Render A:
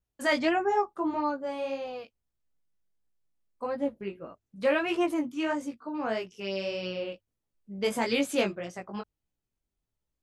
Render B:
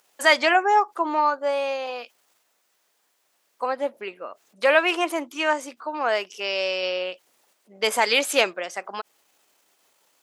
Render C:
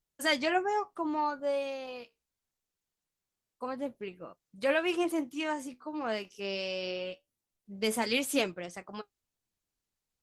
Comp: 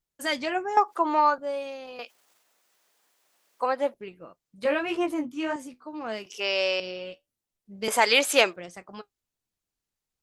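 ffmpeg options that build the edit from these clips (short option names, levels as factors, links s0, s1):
-filter_complex "[1:a]asplit=4[s0][s1][s2][s3];[2:a]asplit=6[s4][s5][s6][s7][s8][s9];[s4]atrim=end=0.772[s10];[s0]atrim=start=0.768:end=1.382[s11];[s5]atrim=start=1.378:end=1.992[s12];[s1]atrim=start=1.988:end=3.942[s13];[s6]atrim=start=3.938:end=4.652[s14];[0:a]atrim=start=4.648:end=5.562[s15];[s7]atrim=start=5.558:end=6.262[s16];[s2]atrim=start=6.258:end=6.802[s17];[s8]atrim=start=6.798:end=7.882[s18];[s3]atrim=start=7.878:end=8.562[s19];[s9]atrim=start=8.558[s20];[s10][s11]acrossfade=d=0.004:c1=hsin:c2=hsin[s21];[s21][s12]acrossfade=d=0.004:c1=hsin:c2=hsin[s22];[s22][s13]acrossfade=d=0.004:c1=hsin:c2=hsin[s23];[s23][s14]acrossfade=d=0.004:c1=hsin:c2=hsin[s24];[s24][s15]acrossfade=d=0.004:c1=hsin:c2=hsin[s25];[s25][s16]acrossfade=d=0.004:c1=hsin:c2=hsin[s26];[s26][s17]acrossfade=d=0.004:c1=hsin:c2=hsin[s27];[s27][s18]acrossfade=d=0.004:c1=hsin:c2=hsin[s28];[s28][s19]acrossfade=d=0.004:c1=hsin:c2=hsin[s29];[s29][s20]acrossfade=d=0.004:c1=hsin:c2=hsin"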